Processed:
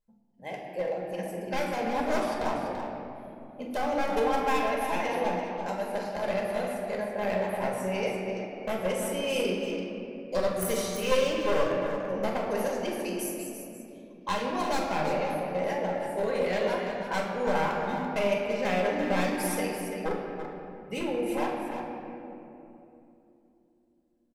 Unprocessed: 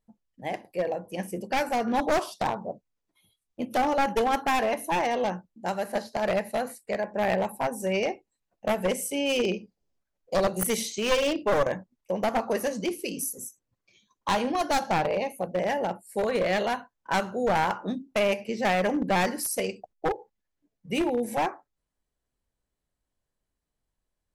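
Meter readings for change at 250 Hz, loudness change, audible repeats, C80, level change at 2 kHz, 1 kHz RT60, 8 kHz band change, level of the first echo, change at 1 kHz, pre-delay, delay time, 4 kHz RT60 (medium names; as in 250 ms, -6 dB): -1.5 dB, -2.5 dB, 2, 1.5 dB, -2.5 dB, 2.6 s, -4.5 dB, -9.0 dB, -3.0 dB, 4 ms, 44 ms, 1.4 s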